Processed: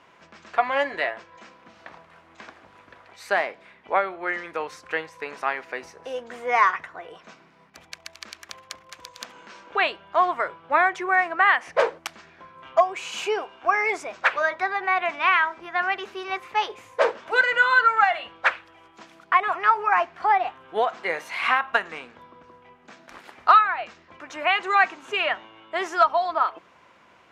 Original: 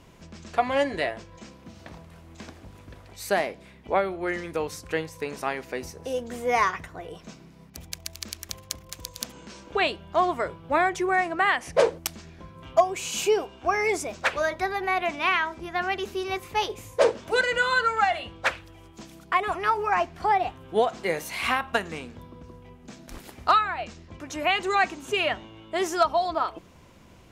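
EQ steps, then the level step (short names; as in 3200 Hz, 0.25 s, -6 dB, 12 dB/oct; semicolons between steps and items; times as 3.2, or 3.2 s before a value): band-pass 1400 Hz, Q 1; +6.0 dB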